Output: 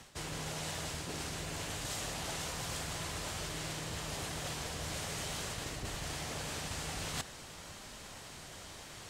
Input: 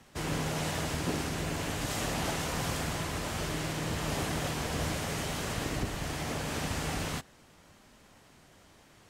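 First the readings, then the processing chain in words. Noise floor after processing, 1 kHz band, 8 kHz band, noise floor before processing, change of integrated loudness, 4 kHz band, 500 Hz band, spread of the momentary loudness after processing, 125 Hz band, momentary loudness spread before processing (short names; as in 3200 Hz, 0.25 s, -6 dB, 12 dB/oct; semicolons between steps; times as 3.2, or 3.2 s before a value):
-50 dBFS, -6.5 dB, -1.5 dB, -59 dBFS, -6.0 dB, -2.5 dB, -8.0 dB, 10 LU, -8.0 dB, 2 LU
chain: reverse; compressor 10:1, threshold -46 dBFS, peak gain reduction 19 dB; reverse; graphic EQ 250/4000/8000 Hz -5/+4/+5 dB; gain +8.5 dB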